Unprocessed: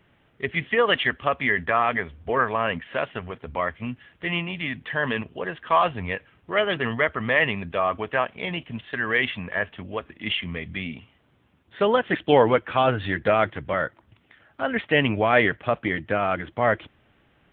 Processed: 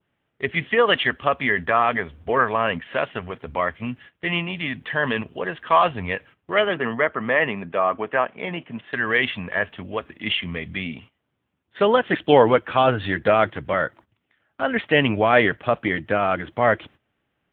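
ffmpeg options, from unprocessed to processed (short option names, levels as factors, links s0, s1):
-filter_complex "[0:a]asettb=1/sr,asplit=3[s0][s1][s2];[s0]atrim=end=6.694[s3];[s1]atrim=start=6.69:end=8.93,asetpts=PTS-STARTPTS,afade=t=in:d=0.004:c=qsin,afade=t=out:st=2.236:d=0.004:c=qsin,highpass=160,lowpass=2200[s4];[s2]atrim=start=8.926[s5];[s3][s4]acrossfade=d=0.004:c1=hsin:c2=qsin[s6];[s6][s5]acrossfade=d=0.004:c1=qsin:c2=hsin,adynamicequalizer=threshold=0.0126:dfrequency=2100:dqfactor=2.5:tfrequency=2100:tqfactor=2.5:attack=5:release=100:ratio=0.375:range=1.5:mode=cutabove:tftype=bell,agate=range=0.178:threshold=0.00447:ratio=16:detection=peak,lowshelf=f=63:g=-8,volume=1.41"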